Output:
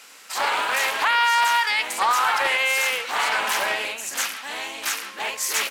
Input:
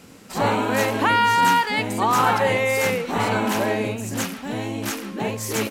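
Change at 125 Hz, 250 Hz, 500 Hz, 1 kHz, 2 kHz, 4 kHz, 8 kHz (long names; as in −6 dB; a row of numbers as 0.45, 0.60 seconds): below −25 dB, −21.0 dB, −9.5 dB, −2.0 dB, +3.0 dB, +4.5 dB, +4.0 dB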